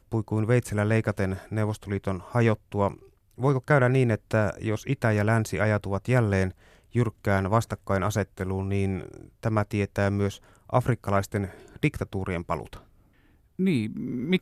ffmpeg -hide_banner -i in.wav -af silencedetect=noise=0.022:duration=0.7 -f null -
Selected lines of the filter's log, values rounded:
silence_start: 12.76
silence_end: 13.59 | silence_duration: 0.83